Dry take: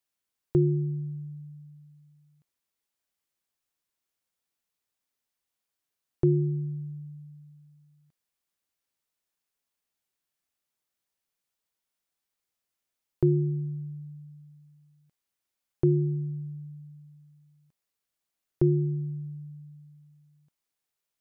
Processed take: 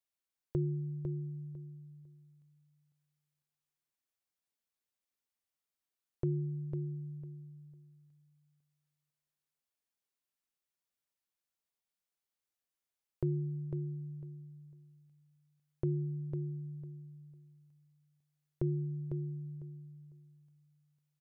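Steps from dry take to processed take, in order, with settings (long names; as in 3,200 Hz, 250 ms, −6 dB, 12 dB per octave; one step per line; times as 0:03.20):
dynamic equaliser 310 Hz, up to −6 dB, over −37 dBFS, Q 1.2
repeating echo 501 ms, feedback 19%, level −7 dB
level −8 dB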